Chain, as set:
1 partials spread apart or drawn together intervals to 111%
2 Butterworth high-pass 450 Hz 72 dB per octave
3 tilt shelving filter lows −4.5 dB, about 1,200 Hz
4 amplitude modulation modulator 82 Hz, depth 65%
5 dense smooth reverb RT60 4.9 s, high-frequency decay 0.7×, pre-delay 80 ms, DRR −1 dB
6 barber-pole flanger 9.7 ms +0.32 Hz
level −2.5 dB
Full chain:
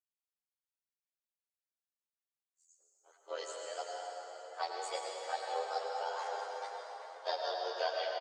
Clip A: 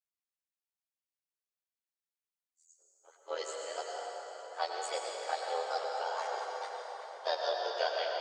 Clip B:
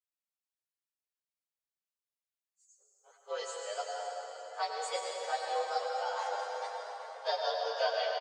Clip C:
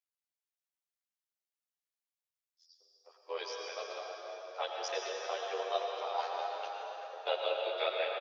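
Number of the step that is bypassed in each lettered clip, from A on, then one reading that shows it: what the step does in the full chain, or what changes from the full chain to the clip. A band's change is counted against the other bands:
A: 6, change in integrated loudness +2.5 LU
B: 4, change in integrated loudness +3.5 LU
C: 1, 8 kHz band −4.0 dB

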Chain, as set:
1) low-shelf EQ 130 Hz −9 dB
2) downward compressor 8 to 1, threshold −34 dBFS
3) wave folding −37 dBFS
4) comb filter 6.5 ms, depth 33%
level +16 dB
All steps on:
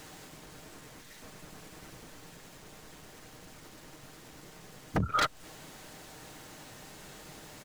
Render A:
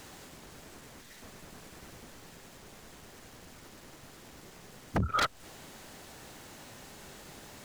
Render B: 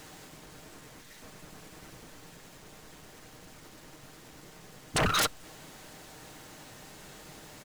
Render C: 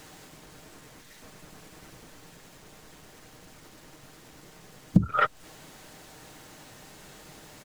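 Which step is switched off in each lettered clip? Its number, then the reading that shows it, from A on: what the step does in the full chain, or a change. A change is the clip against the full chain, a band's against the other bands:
4, change in crest factor −2.0 dB
2, average gain reduction 13.0 dB
3, change in crest factor +7.5 dB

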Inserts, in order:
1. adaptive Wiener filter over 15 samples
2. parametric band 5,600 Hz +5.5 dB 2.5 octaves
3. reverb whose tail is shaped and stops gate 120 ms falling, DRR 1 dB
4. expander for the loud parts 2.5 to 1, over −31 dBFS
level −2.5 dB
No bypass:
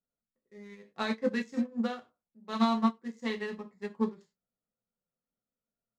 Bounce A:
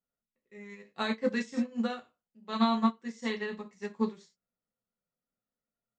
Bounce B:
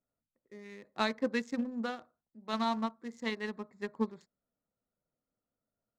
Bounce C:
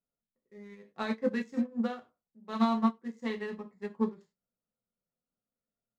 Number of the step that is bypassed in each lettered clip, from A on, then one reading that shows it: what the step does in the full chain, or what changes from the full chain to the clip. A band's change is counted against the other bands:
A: 1, 4 kHz band +1.5 dB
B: 3, change in crest factor +3.5 dB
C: 2, 4 kHz band −4.5 dB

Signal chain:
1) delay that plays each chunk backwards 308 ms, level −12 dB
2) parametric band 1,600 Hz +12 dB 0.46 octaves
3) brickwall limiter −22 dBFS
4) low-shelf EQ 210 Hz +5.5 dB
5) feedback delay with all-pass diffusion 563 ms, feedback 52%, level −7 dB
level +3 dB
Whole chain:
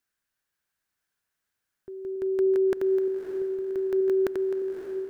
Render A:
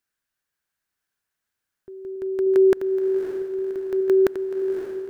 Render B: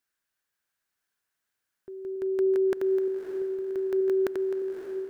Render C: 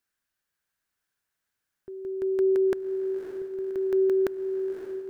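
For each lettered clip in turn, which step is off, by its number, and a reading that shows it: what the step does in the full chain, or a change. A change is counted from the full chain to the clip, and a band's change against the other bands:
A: 3, change in crest factor +4.0 dB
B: 4, change in integrated loudness −1.5 LU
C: 1, change in momentary loudness spread +3 LU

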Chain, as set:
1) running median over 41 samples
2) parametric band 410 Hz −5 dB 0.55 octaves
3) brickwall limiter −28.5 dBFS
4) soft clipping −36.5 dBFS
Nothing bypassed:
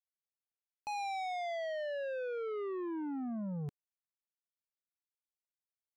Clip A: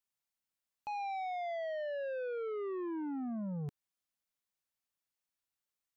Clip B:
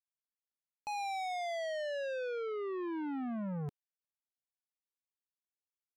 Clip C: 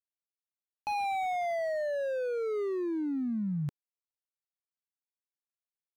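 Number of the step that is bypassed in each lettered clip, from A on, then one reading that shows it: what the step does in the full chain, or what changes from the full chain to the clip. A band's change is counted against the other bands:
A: 1, 4 kHz band −6.5 dB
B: 3, average gain reduction 3.5 dB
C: 4, distortion level −15 dB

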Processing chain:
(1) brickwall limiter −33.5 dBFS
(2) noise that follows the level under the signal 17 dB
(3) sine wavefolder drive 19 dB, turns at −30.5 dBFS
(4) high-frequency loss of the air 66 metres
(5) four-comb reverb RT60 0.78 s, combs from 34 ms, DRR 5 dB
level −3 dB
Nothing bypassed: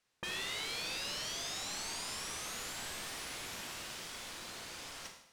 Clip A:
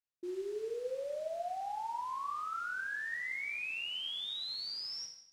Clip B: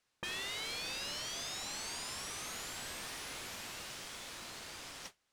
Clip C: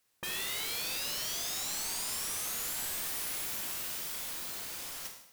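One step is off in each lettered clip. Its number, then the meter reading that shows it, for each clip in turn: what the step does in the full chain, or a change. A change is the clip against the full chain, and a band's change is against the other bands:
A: 3, change in crest factor −3.5 dB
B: 5, change in crest factor −3.0 dB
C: 4, 8 kHz band +6.5 dB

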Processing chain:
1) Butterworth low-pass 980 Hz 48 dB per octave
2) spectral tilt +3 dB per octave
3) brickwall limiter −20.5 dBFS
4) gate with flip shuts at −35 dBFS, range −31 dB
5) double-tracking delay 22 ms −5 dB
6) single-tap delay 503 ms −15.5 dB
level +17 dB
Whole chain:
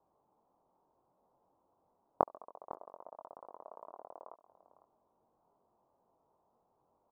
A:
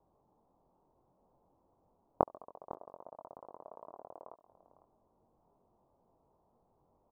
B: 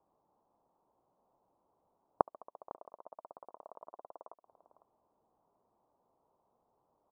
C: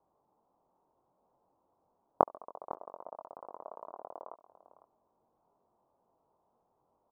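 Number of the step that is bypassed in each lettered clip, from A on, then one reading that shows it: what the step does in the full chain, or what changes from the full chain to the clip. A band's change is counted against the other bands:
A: 2, 125 Hz band +6.0 dB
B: 5, change in integrated loudness −1.0 LU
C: 3, average gain reduction 4.0 dB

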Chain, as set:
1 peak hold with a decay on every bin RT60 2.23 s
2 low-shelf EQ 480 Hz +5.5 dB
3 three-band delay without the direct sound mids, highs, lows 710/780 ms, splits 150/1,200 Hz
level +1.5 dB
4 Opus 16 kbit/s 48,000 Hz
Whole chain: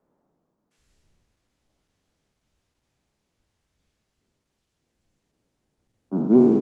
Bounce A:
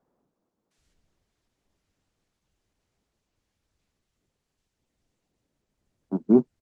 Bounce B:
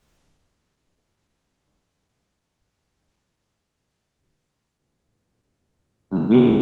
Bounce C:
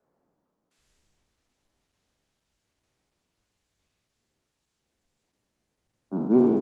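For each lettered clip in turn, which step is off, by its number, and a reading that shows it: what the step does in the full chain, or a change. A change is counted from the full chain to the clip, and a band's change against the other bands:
1, change in crest factor +3.5 dB
3, change in momentary loudness spread −1 LU
2, 1 kHz band +3.5 dB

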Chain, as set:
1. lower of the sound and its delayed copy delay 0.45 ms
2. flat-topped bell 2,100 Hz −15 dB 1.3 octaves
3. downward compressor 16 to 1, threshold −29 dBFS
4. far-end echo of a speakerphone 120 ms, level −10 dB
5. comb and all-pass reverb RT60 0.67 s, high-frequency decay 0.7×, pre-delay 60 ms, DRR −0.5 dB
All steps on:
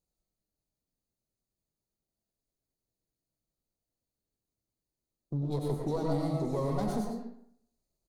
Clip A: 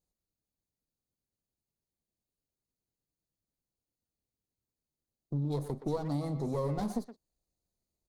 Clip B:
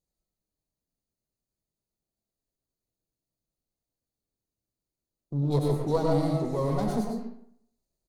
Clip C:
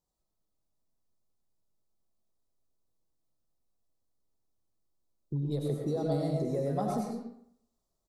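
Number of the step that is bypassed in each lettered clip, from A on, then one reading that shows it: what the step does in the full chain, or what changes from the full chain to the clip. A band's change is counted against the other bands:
5, change in momentary loudness spread −2 LU
3, average gain reduction 4.0 dB
1, change in crest factor +1.5 dB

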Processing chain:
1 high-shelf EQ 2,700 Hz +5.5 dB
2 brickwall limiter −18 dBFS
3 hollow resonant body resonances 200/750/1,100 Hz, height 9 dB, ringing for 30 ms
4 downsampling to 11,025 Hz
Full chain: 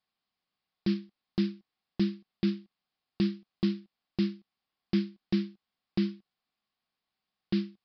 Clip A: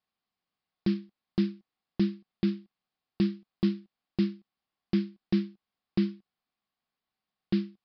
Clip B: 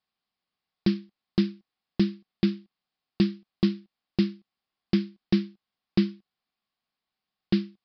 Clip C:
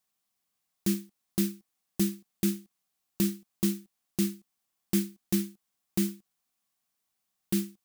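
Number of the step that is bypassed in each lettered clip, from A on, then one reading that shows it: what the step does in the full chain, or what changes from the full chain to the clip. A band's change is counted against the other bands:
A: 1, 4 kHz band −3.5 dB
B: 2, change in crest factor +2.5 dB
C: 4, change in crest factor +2.0 dB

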